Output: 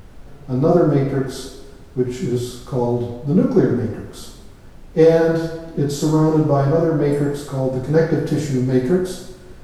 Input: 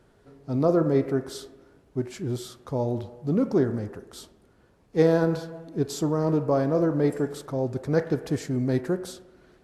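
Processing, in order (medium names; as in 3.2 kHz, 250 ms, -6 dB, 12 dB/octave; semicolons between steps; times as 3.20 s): two-slope reverb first 0.6 s, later 1.8 s, DRR -6 dB; added noise brown -39 dBFS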